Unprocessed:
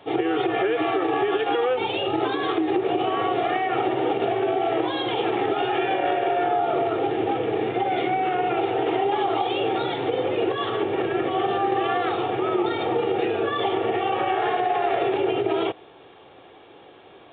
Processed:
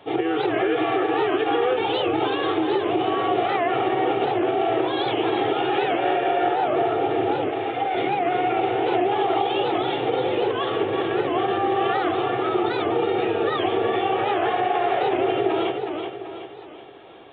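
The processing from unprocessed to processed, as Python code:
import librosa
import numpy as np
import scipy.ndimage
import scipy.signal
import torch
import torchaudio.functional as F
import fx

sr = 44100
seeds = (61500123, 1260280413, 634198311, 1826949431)

p1 = fx.highpass(x, sr, hz=600.0, slope=24, at=(7.49, 7.95))
p2 = p1 + fx.echo_feedback(p1, sr, ms=376, feedback_pct=47, wet_db=-6.0, dry=0)
y = fx.record_warp(p2, sr, rpm=78.0, depth_cents=160.0)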